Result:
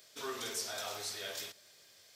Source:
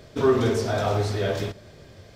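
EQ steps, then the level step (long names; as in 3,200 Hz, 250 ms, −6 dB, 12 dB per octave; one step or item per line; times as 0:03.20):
first difference
+1.5 dB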